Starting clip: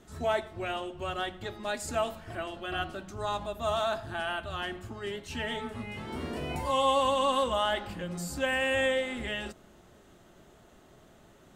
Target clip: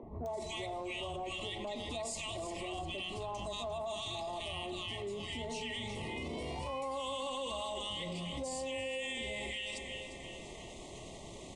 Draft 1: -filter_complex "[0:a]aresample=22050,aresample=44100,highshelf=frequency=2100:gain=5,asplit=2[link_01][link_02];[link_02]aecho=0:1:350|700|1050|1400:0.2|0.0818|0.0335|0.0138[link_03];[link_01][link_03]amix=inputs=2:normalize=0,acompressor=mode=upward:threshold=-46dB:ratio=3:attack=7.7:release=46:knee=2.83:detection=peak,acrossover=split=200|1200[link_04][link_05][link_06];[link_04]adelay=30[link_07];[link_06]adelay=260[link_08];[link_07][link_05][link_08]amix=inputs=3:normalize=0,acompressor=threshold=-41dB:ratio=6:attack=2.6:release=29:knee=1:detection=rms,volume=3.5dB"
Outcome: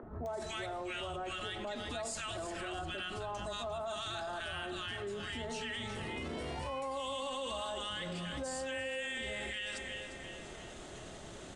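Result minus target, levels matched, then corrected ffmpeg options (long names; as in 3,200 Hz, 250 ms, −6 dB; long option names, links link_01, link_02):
2,000 Hz band +2.5 dB
-filter_complex "[0:a]aresample=22050,aresample=44100,asuperstop=centerf=1500:order=12:qfactor=2,highshelf=frequency=2100:gain=5,asplit=2[link_01][link_02];[link_02]aecho=0:1:350|700|1050|1400:0.2|0.0818|0.0335|0.0138[link_03];[link_01][link_03]amix=inputs=2:normalize=0,acompressor=mode=upward:threshold=-46dB:ratio=3:attack=7.7:release=46:knee=2.83:detection=peak,acrossover=split=200|1200[link_04][link_05][link_06];[link_04]adelay=30[link_07];[link_06]adelay=260[link_08];[link_07][link_05][link_08]amix=inputs=3:normalize=0,acompressor=threshold=-41dB:ratio=6:attack=2.6:release=29:knee=1:detection=rms,volume=3.5dB"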